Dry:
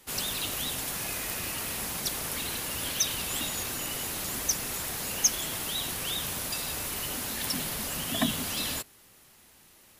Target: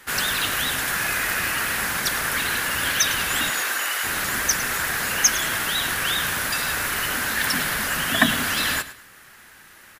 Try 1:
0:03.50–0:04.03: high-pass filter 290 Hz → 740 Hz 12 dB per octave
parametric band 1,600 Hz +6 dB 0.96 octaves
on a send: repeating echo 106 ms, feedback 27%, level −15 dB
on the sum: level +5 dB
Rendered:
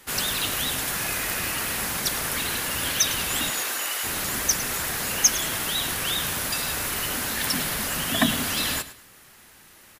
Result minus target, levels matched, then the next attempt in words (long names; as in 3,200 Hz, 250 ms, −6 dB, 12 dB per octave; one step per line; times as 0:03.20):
2,000 Hz band −5.0 dB
0:03.50–0:04.03: high-pass filter 290 Hz → 740 Hz 12 dB per octave
parametric band 1,600 Hz +15.5 dB 0.96 octaves
on a send: repeating echo 106 ms, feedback 27%, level −15 dB
on the sum: level +5 dB